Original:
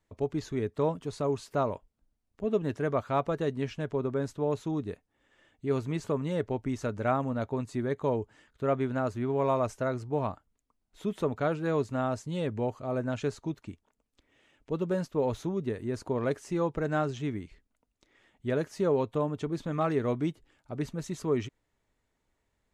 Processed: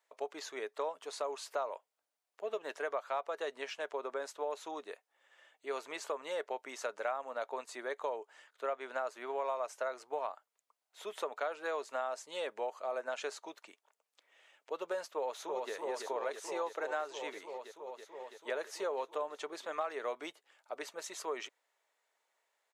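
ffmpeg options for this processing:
-filter_complex "[0:a]asplit=2[s0][s1];[s1]afade=t=in:st=15.15:d=0.01,afade=t=out:st=15.73:d=0.01,aecho=0:1:330|660|990|1320|1650|1980|2310|2640|2970|3300|3630|3960:0.595662|0.506313|0.430366|0.365811|0.310939|0.264298|0.224654|0.190956|0.162312|0.137965|0.117271|0.09968[s2];[s0][s2]amix=inputs=2:normalize=0,highpass=f=550:w=0.5412,highpass=f=550:w=1.3066,acompressor=threshold=0.0178:ratio=5,volume=1.26"

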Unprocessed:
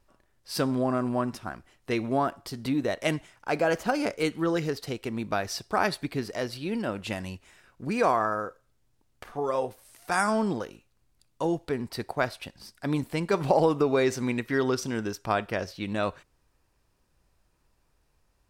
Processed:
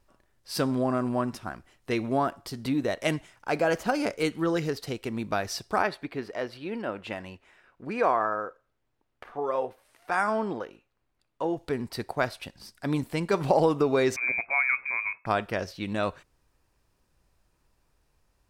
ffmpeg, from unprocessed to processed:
-filter_complex "[0:a]asplit=3[s0][s1][s2];[s0]afade=t=out:st=5.81:d=0.02[s3];[s1]bass=f=250:g=-9,treble=f=4000:g=-14,afade=t=in:st=5.81:d=0.02,afade=t=out:st=11.56:d=0.02[s4];[s2]afade=t=in:st=11.56:d=0.02[s5];[s3][s4][s5]amix=inputs=3:normalize=0,asettb=1/sr,asplit=3[s6][s7][s8];[s6]atrim=end=14.164[s9];[s7]atrim=start=14.16:end=15.26,asetpts=PTS-STARTPTS,afade=t=in:d=0.004:c=qsin,afade=t=out:st=1.096:d=0.004:c=qsin,lowpass=f=2200:t=q:w=0.5098,lowpass=f=2200:t=q:w=0.6013,lowpass=f=2200:t=q:w=0.9,lowpass=f=2200:t=q:w=2.563,afreqshift=-2600[s10];[s8]atrim=start=15.256[s11];[s9][s10]acrossfade=d=0.004:c1=hsin:c2=qsin[s12];[s12][s11]acrossfade=d=0.004:c1=qsin:c2=hsin"

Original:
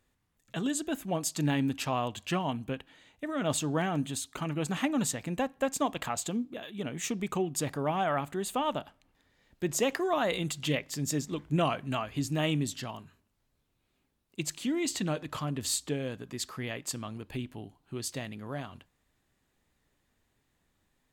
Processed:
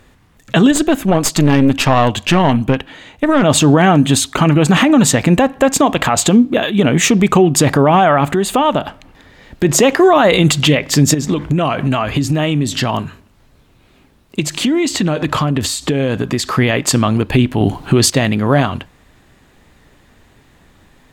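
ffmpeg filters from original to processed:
-filter_complex "[0:a]asettb=1/sr,asplit=3[s0][s1][s2];[s0]atrim=end=0.714[s3];[s1]atrim=start=0.71:end=3.43,asetpts=PTS-STARTPTS,afade=t=in:d=0.004:c=qsin,afade=t=out:st=2.716:d=0.004:c=qsin,aeval=exprs='(tanh(15.8*val(0)+0.65)-tanh(0.65))/15.8':c=same[s4];[s2]atrim=start=3.426[s5];[s3][s4]acrossfade=d=0.004:c1=hsin:c2=qsin[s6];[s6][s5]acrossfade=d=0.004:c1=qsin:c2=hsin,asettb=1/sr,asplit=3[s7][s8][s9];[s7]atrim=end=8.304[s10];[s8]atrim=start=8.3:end=9.65,asetpts=PTS-STARTPTS,afade=t=in:d=0.004:c=qsin,afade=t=out:st=1.346:d=0.004:c=qsin,acompressor=threshold=0.01:ratio=2.5:attack=3.2:release=140:knee=1:detection=peak[s11];[s9]atrim=start=9.646[s12];[s10][s11]acrossfade=d=0.004:c1=hsin:c2=qsin[s13];[s13][s12]acrossfade=d=0.004:c1=qsin:c2=hsin,asettb=1/sr,asplit=3[s14][s15][s16];[s14]atrim=end=11.144[s17];[s15]atrim=start=11.14:end=16.54,asetpts=PTS-STARTPTS,afade=t=in:d=0.004:c=qsin,afade=t=out:st=5.396:d=0.004:c=qsin,acompressor=threshold=0.0141:ratio=16:attack=3.2:release=140:knee=1:detection=peak[s18];[s16]atrim=start=16.536[s19];[s17][s18]acrossfade=d=0.004:c1=hsin:c2=qsin[s20];[s20][s19]acrossfade=d=0.004:c1=qsin:c2=hsin,asplit=3[s21][s22][s23];[s21]atrim=end=17.612[s24];[s22]atrim=start=17.608:end=18.102,asetpts=PTS-STARTPTS,volume=3.98[s25];[s23]atrim=start=18.098[s26];[s24][s25]acrossfade=d=0.004:c1=hsin:c2=hsin[s27];[s27][s26]acrossfade=d=0.004:c1=hsin:c2=hsin,highshelf=f=5400:g=-9.5,acompressor=threshold=0.0251:ratio=2,alimiter=level_in=23.7:limit=0.891:release=50:level=0:latency=1,volume=0.891"

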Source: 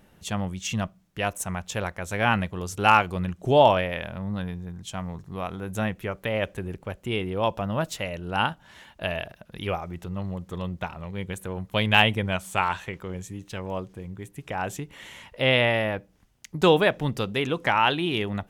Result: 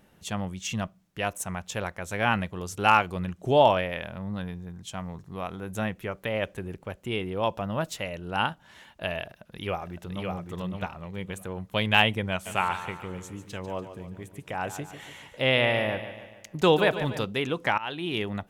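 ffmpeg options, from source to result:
-filter_complex "[0:a]asplit=2[s0][s1];[s1]afade=t=in:st=9.24:d=0.01,afade=t=out:st=10.3:d=0.01,aecho=0:1:560|1120|1680|2240:0.668344|0.167086|0.0417715|0.0104429[s2];[s0][s2]amix=inputs=2:normalize=0,asplit=3[s3][s4][s5];[s3]afade=t=out:st=12.45:d=0.02[s6];[s4]aecho=1:1:145|290|435|580|725:0.282|0.141|0.0705|0.0352|0.0176,afade=t=in:st=12.45:d=0.02,afade=t=out:st=17.24:d=0.02[s7];[s5]afade=t=in:st=17.24:d=0.02[s8];[s6][s7][s8]amix=inputs=3:normalize=0,asplit=2[s9][s10];[s9]atrim=end=17.78,asetpts=PTS-STARTPTS,afade=t=out:st=17.776:d=0.004:c=hsin:silence=0.105925[s11];[s10]atrim=start=17.78,asetpts=PTS-STARTPTS,afade=t=in:d=0.4:silence=0.105925[s12];[s11][s12]concat=n=2:v=0:a=1,lowshelf=f=66:g=-6.5,volume=0.794"

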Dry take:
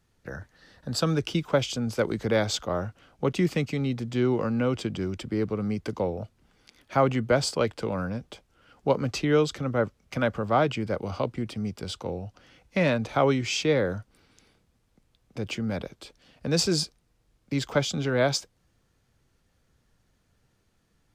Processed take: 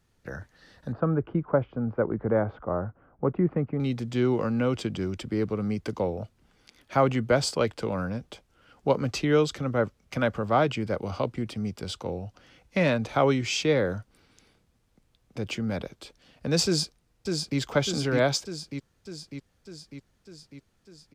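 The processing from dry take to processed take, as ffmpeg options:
-filter_complex "[0:a]asettb=1/sr,asplit=3[s0][s1][s2];[s0]atrim=end=0.924[s3];[s1]atrim=start=0.92:end=3.8,asetpts=PTS-STARTPTS,afade=t=in:d=0.004:c=qsin,afade=t=out:st=2.876:d=0.004:c=qsin,lowpass=f=1400:w=0.5412,lowpass=f=1400:w=1.3066[s4];[s2]atrim=start=3.796[s5];[s3][s4]acrossfade=d=0.004:c1=hsin:c2=qsin[s6];[s6][s5]acrossfade=d=0.004:c1=qsin:c2=hsin,asplit=2[s7][s8];[s8]afade=t=in:st=16.65:d=0.01,afade=t=out:st=17.59:d=0.01,aecho=0:1:600|1200|1800|2400|3000|3600|4200|4800|5400|6000:0.630957|0.410122|0.266579|0.173277|0.11263|0.0732094|0.0475861|0.030931|0.0201051|0.0130683[s9];[s7][s9]amix=inputs=2:normalize=0"

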